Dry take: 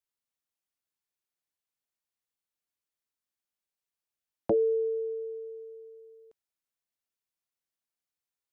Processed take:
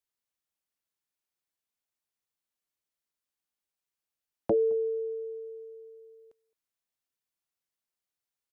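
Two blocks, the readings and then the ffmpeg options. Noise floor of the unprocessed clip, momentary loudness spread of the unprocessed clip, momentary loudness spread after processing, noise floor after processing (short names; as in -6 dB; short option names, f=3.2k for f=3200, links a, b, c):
under -85 dBFS, 19 LU, 20 LU, under -85 dBFS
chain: -filter_complex "[0:a]asplit=2[a][b];[b]adelay=215.7,volume=-24dB,highshelf=f=4k:g=-4.85[c];[a][c]amix=inputs=2:normalize=0"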